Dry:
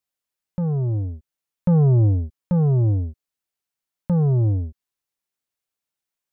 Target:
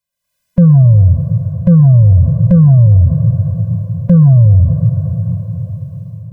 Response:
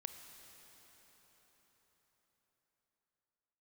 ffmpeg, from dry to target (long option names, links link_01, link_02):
-filter_complex "[0:a]dynaudnorm=framelen=110:gausssize=5:maxgain=15dB,asplit=2[link_01][link_02];[1:a]atrim=start_sample=2205,lowshelf=frequency=230:gain=4.5[link_03];[link_02][link_03]afir=irnorm=-1:irlink=0,volume=0.5dB[link_04];[link_01][link_04]amix=inputs=2:normalize=0,alimiter=level_in=4.5dB:limit=-1dB:release=50:level=0:latency=1,afftfilt=real='re*eq(mod(floor(b*sr/1024/240),2),0)':imag='im*eq(mod(floor(b*sr/1024/240),2),0)':win_size=1024:overlap=0.75,volume=-2dB"